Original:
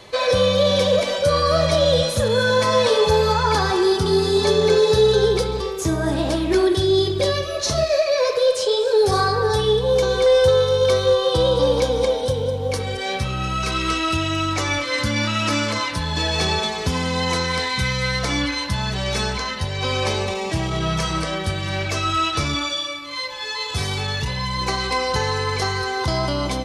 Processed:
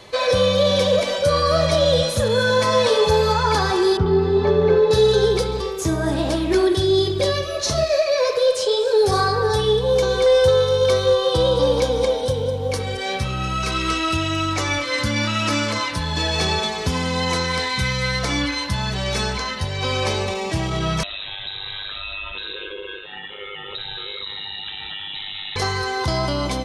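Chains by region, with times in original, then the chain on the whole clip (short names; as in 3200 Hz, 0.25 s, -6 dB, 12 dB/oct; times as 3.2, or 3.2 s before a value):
3.97–4.91 LPF 1800 Hz + low shelf 130 Hz +5.5 dB
21.03–25.56 ring modulator 50 Hz + compressor 5:1, threshold -27 dBFS + inverted band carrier 3900 Hz
whole clip: dry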